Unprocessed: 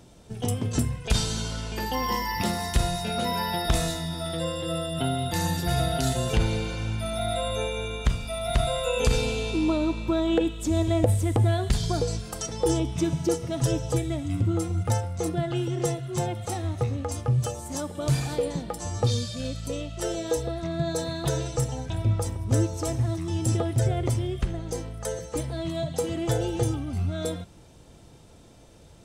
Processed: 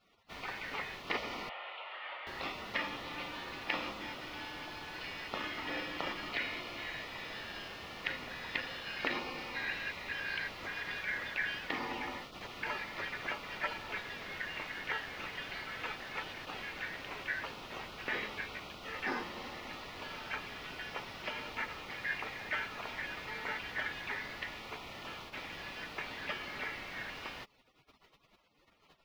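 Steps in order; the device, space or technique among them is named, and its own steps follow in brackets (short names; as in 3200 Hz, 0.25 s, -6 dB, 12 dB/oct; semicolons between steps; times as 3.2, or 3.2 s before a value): split-band scrambled radio (four-band scrambler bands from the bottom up 4123; BPF 300–2900 Hz; white noise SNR 15 dB); spectral gate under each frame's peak -20 dB weak; 1.49–2.27 Chebyshev band-pass 570–3200 Hz, order 3; air absorption 310 m; gain +5.5 dB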